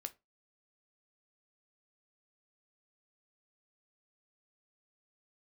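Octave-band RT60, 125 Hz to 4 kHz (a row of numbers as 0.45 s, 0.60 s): 0.25 s, 0.25 s, 0.25 s, 0.20 s, 0.20 s, 0.15 s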